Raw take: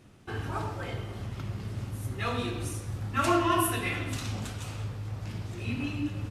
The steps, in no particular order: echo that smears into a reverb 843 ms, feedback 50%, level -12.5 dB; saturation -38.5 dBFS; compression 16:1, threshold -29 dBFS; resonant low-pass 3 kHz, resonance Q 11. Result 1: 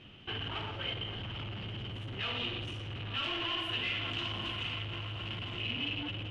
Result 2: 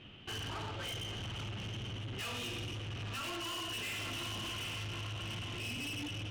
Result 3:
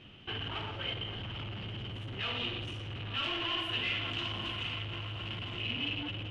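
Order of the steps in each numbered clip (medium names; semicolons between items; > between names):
echo that smears into a reverb > saturation > resonant low-pass > compression; echo that smears into a reverb > compression > resonant low-pass > saturation; echo that smears into a reverb > saturation > compression > resonant low-pass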